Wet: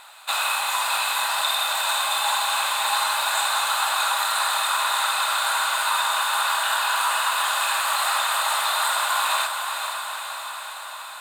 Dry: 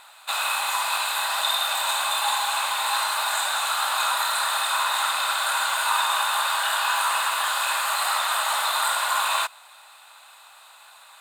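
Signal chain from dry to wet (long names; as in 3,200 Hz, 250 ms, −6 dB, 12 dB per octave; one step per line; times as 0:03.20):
speech leveller within 3 dB
on a send: feedback delay with all-pass diffusion 500 ms, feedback 67%, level −6.5 dB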